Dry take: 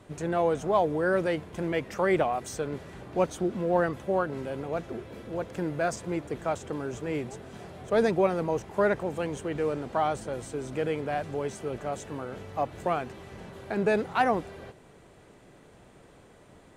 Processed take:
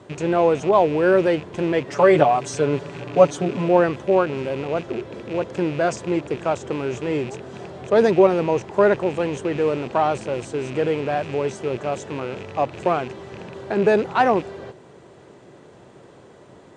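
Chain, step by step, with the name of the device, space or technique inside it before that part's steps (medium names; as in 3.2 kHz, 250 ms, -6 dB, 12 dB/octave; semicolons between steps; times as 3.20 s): 1.87–3.69 s: comb 7 ms, depth 95%; car door speaker with a rattle (rattle on loud lows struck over -41 dBFS, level -32 dBFS; cabinet simulation 91–7900 Hz, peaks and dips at 130 Hz +3 dB, 370 Hz +6 dB, 550 Hz +3 dB, 960 Hz +3 dB, 2.3 kHz -3 dB); trim +5.5 dB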